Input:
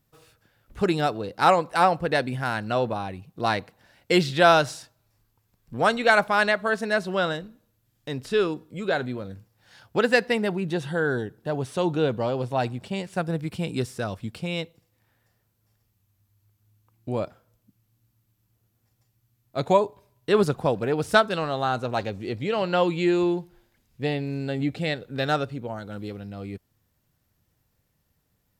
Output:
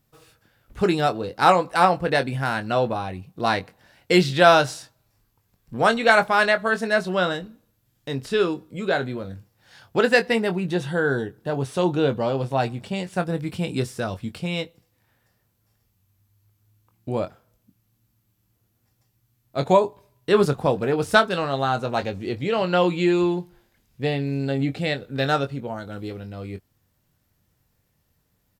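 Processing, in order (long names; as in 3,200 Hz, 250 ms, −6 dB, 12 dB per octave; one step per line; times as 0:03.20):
double-tracking delay 22 ms −9 dB
level +2 dB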